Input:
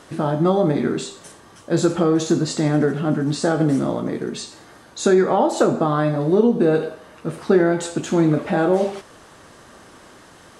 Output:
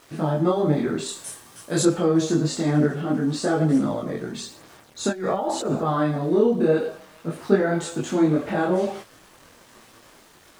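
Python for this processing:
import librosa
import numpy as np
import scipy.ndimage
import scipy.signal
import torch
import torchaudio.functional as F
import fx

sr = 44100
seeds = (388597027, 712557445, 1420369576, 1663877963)

y = fx.curve_eq(x, sr, hz=(600.0, 6300.0, 9800.0), db=(0, 7, 15), at=(1.06, 1.83))
y = fx.over_compress(y, sr, threshold_db=-19.0, ratio=-0.5, at=(5.09, 5.89), fade=0.02)
y = np.where(np.abs(y) >= 10.0 ** (-43.0 / 20.0), y, 0.0)
y = fx.chorus_voices(y, sr, voices=2, hz=0.53, base_ms=23, depth_ms=4.6, mix_pct=55)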